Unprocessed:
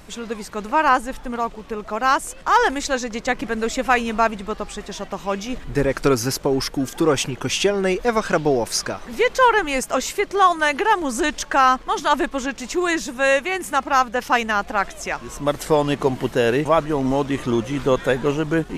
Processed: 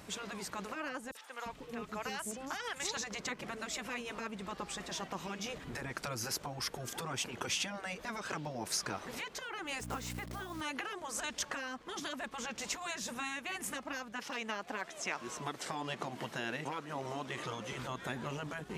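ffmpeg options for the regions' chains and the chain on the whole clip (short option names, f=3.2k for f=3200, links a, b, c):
-filter_complex "[0:a]asettb=1/sr,asplit=3[a][b][c];[a]atrim=end=1.114[d];[b]atrim=start=1.11:end=2.97,asetpts=PTS-STARTPTS,afade=t=in:d=0.004:c=qsin,afade=t=out:st=1.856:d=0.004:c=qsin,equalizer=f=690:t=o:w=1.8:g=-7.5,acrossover=split=520|5700[e][f][g];[f]adelay=40[h];[e]adelay=350[i];[i][h][g]amix=inputs=3:normalize=0,atrim=end_sample=82026[j];[c]atrim=start=2.966[k];[d][j]acrossfade=d=0.004:c1=hsin:c2=qsin[l];[l][k]acrossfade=d=0.004:c1=qsin:c2=hsin,asettb=1/sr,asplit=3[m][n][o];[m]atrim=end=9.804[p];[n]atrim=start=9.8:end=10.61,asetpts=PTS-STARTPTS,afade=t=in:d=0.004:c=qsin,afade=t=out:st=0.806:d=0.004:c=qsin,highshelf=f=2.2k:g=-9.5,acrusher=bits=7:dc=4:mix=0:aa=0.000001,aeval=exprs='val(0)+0.0316*(sin(2*PI*60*n/s)+sin(2*PI*2*60*n/s)/2+sin(2*PI*3*60*n/s)/3+sin(2*PI*4*60*n/s)/4+sin(2*PI*5*60*n/s)/5)':c=same[q];[o]atrim=start=10.606[r];[p][q]acrossfade=d=0.004:c1=hsin:c2=qsin[s];[s][r]acrossfade=d=0.004:c1=qsin:c2=hsin,asettb=1/sr,asplit=3[t][u][v];[t]atrim=end=14.124[w];[u]atrim=start=14.12:end=17.72,asetpts=PTS-STARTPTS,afade=t=in:d=0.004:c=qsin,afade=t=out:st=3.596:d=0.004:c=qsin,acrossover=split=8200[x][y];[y]acompressor=threshold=-55dB:ratio=4:attack=1:release=60[z];[x][z]amix=inputs=2:normalize=0,highpass=f=290:p=1,asoftclip=type=hard:threshold=-8dB[aa];[v]atrim=start=17.716[ab];[w][aa]acrossfade=d=0.004:c1=hsin:c2=qsin[ac];[ac][ab]acrossfade=d=0.004:c1=qsin:c2=hsin,acompressor=threshold=-24dB:ratio=6,highpass=88,afftfilt=real='re*lt(hypot(re,im),0.2)':imag='im*lt(hypot(re,im),0.2)':win_size=1024:overlap=0.75,volume=-6dB"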